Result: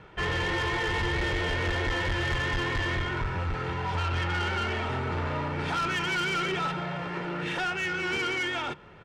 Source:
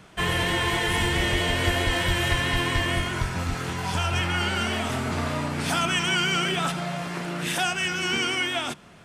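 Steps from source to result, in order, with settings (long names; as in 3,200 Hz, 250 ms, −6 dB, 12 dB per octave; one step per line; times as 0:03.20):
low-pass filter 2,500 Hz 12 dB per octave
comb filter 2.2 ms, depth 52%
soft clipping −24.5 dBFS, distortion −10 dB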